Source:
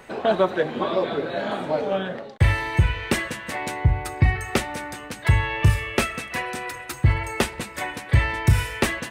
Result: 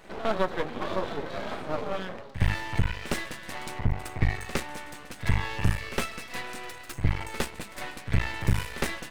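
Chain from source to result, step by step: reverse echo 60 ms -13 dB; half-wave rectifier; trim -3.5 dB

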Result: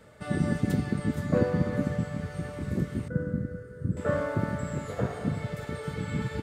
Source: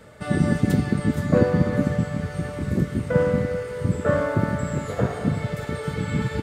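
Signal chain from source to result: 3.08–3.97 s: FFT filter 340 Hz 0 dB, 920 Hz -25 dB, 1.5 kHz -4 dB, 2.3 kHz -24 dB, 9.1 kHz -13 dB; trim -6.5 dB

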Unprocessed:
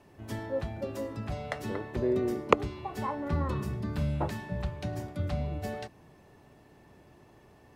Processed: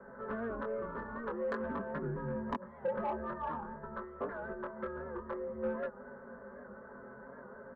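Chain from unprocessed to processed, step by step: comb 6.5 ms, depth 78%; compression 12:1, threshold -37 dBFS, peak gain reduction 24 dB; chorus 0.5 Hz, delay 19 ms, depth 4.6 ms; mistuned SSB -220 Hz 270–2000 Hz; static phaser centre 500 Hz, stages 8; overdrive pedal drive 19 dB, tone 1.4 kHz, clips at -31.5 dBFS; warped record 78 rpm, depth 100 cents; trim +8 dB

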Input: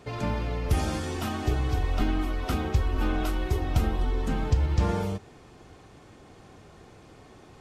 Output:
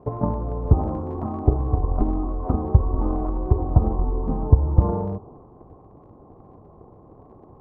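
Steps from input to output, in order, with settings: elliptic low-pass 1.1 kHz, stop band 40 dB; transient shaper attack +9 dB, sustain +5 dB; trim +2.5 dB

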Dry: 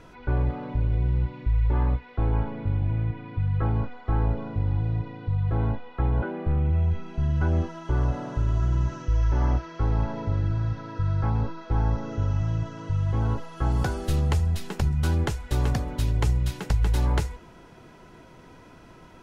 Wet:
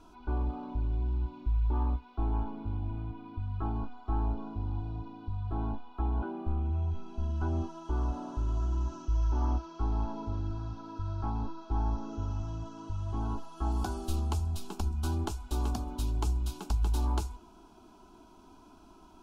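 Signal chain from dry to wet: static phaser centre 510 Hz, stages 6; trim -3.5 dB

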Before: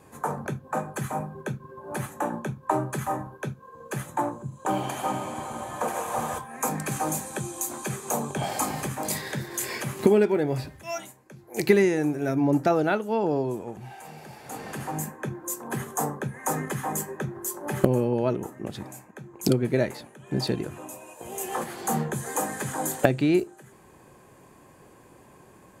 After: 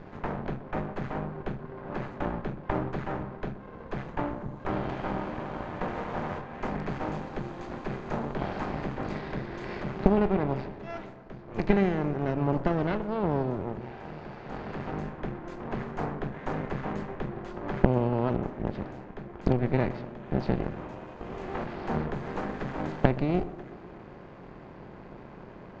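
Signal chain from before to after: spectral levelling over time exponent 0.6; half-wave rectifier; Gaussian low-pass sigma 2.5 samples; bass shelf 83 Hz +9.5 dB; on a send: tape echo 124 ms, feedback 76%, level -12.5 dB, low-pass 1.3 kHz; on the sum: Chebyshev shaper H 2 -8 dB, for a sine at 1.5 dBFS; peaking EQ 180 Hz +4 dB 0.59 oct; trim -7.5 dB

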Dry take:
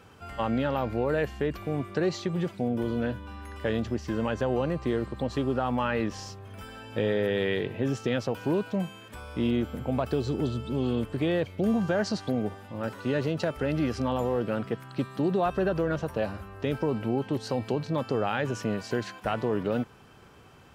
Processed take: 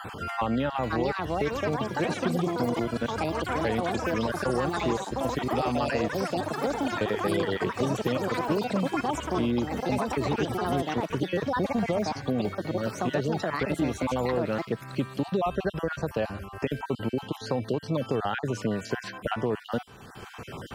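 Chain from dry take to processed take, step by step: random holes in the spectrogram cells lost 31%; ever faster or slower copies 630 ms, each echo +6 st, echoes 3; three bands compressed up and down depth 70%

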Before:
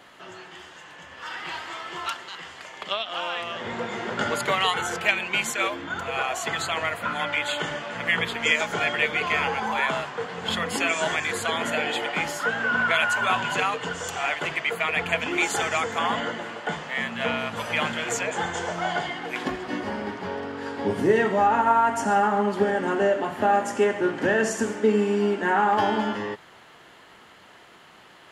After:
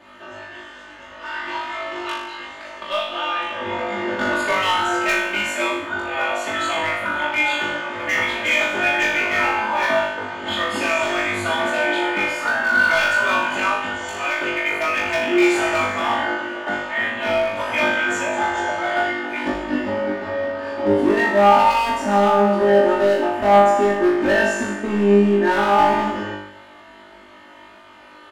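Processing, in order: treble shelf 4 kHz -12 dB; comb 3.3 ms, depth 84%; overload inside the chain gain 18 dB; flutter echo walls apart 3.4 m, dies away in 0.73 s

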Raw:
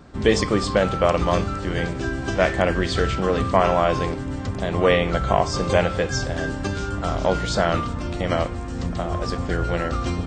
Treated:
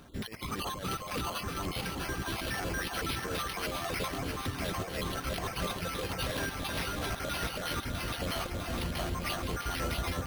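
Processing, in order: random holes in the spectrogram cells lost 37%; pre-emphasis filter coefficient 0.8; reverb removal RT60 0.61 s; dynamic bell 4.5 kHz, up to +7 dB, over -52 dBFS, Q 0.94; compressor with a negative ratio -37 dBFS, ratio -0.5; hard clipper -34.5 dBFS, distortion -11 dB; echo whose repeats swap between lows and highs 326 ms, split 1.5 kHz, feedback 84%, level -4 dB; careless resampling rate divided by 6×, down none, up hold; trim +3.5 dB

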